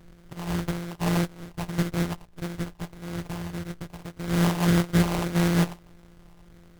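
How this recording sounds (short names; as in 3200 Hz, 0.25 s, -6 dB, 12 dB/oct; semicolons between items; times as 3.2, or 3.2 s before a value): a buzz of ramps at a fixed pitch in blocks of 256 samples; phasing stages 8, 1.7 Hz, lowest notch 520–1100 Hz; aliases and images of a low sample rate 1800 Hz, jitter 20%; AAC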